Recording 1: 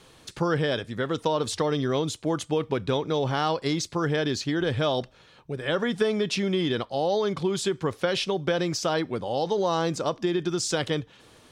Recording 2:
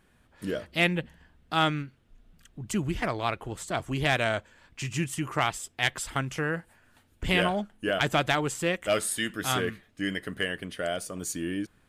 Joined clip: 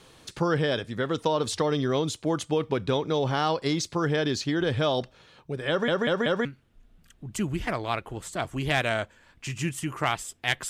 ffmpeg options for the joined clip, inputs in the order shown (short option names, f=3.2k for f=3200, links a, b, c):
-filter_complex "[0:a]apad=whole_dur=10.69,atrim=end=10.69,asplit=4[a][b][c][d];[a]atrim=end=5.882[e];[b]atrim=start=5.688:end=5.882[f];[c]atrim=start=5.688:end=5.882[g];[d]atrim=start=5.688:end=5.882[h];[1:a]atrim=start=1.798:end=6.04[i];[e][f]acrossfade=d=0.004:c1=hsin:c2=hsin[j];[j][g]acrossfade=d=0.004:c1=hsin:c2=hsin[k];[k][h]acrossfade=d=0.004:c1=hsin:c2=hsin[l];[l][i]acrossfade=d=0.004:c1=hsin:c2=hsin"